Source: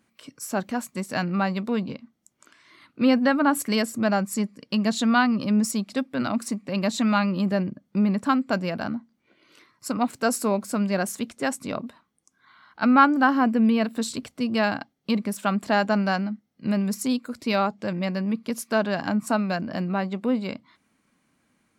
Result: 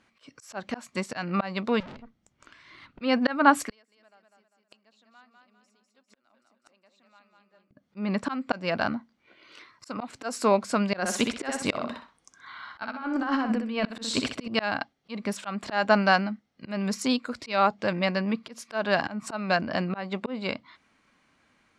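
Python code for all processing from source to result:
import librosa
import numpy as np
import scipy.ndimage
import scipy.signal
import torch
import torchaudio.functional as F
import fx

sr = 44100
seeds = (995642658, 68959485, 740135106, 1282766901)

y = fx.chain(x, sr, fx.bass_treble(bass_db=12, treble_db=-2),
    fx.tube_stage(drive_db=42.0, bias=0.6), at=(1.8, 3.01))
y = fx.chain(y, sr, fx.highpass(hz=280.0, slope=12),
    fx.echo_feedback(ms=199, feedback_pct=40, wet_db=-4.0),
    fx.gate_flip(shuts_db=-23.0, range_db=-40), at=(3.64, 7.71))
y = fx.chain(y, sr, fx.over_compress(threshold_db=-25.0, ratio=-0.5),
    fx.echo_feedback(ms=63, feedback_pct=25, wet_db=-6.5), at=(10.99, 14.48))
y = scipy.signal.sosfilt(scipy.signal.butter(2, 5100.0, 'lowpass', fs=sr, output='sos'), y)
y = fx.peak_eq(y, sr, hz=190.0, db=-9.0, octaves=2.4)
y = fx.auto_swell(y, sr, attack_ms=215.0)
y = y * 10.0 ** (6.5 / 20.0)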